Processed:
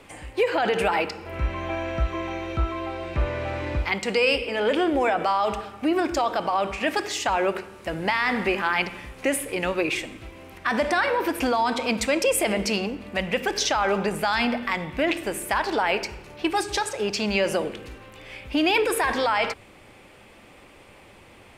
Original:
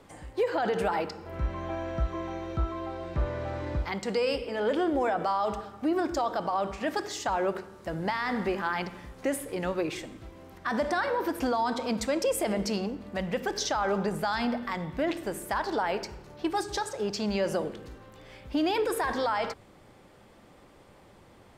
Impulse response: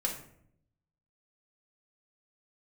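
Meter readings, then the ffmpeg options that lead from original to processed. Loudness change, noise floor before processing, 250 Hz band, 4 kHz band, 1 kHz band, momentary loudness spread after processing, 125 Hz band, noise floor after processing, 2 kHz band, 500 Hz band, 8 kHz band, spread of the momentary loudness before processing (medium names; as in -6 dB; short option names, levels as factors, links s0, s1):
+5.5 dB, -55 dBFS, +3.5 dB, +9.0 dB, +5.0 dB, 9 LU, +3.0 dB, -50 dBFS, +9.5 dB, +4.5 dB, +7.5 dB, 8 LU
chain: -af "equalizer=f=160:t=o:w=0.67:g=-4,equalizer=f=2500:t=o:w=0.67:g=11,equalizer=f=10000:t=o:w=0.67:g=5,volume=1.68"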